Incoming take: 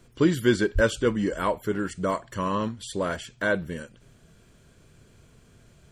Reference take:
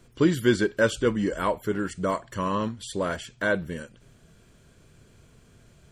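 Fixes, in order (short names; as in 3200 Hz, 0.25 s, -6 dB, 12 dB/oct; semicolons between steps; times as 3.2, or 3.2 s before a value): 0.74–0.86 HPF 140 Hz 24 dB/oct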